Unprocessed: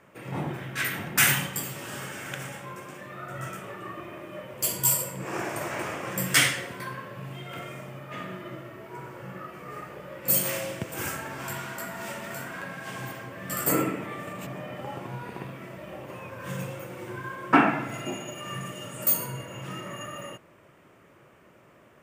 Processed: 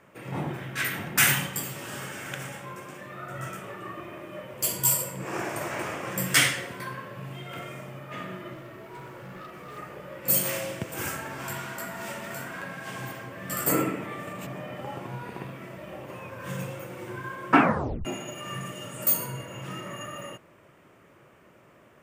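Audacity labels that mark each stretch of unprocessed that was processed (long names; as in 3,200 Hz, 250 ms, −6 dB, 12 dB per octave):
8.530000	9.780000	hard clipping −38.5 dBFS
17.590000	17.590000	tape stop 0.46 s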